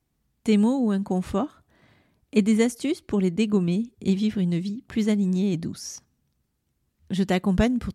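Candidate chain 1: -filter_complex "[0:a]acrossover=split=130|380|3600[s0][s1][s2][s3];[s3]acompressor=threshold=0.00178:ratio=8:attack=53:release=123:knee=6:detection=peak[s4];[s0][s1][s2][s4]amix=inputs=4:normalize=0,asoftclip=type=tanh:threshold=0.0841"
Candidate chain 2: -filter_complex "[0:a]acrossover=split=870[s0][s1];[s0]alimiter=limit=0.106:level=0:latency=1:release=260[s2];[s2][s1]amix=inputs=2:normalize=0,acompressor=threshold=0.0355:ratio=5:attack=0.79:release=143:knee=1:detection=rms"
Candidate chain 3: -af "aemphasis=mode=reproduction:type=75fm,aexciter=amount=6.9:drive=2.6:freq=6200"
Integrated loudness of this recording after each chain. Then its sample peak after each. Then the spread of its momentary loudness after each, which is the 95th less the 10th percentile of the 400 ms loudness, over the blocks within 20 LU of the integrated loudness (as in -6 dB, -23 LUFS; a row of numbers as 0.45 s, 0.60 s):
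-28.5 LUFS, -35.5 LUFS, -23.5 LUFS; -21.5 dBFS, -23.5 dBFS, -6.5 dBFS; 8 LU, 5 LU, 10 LU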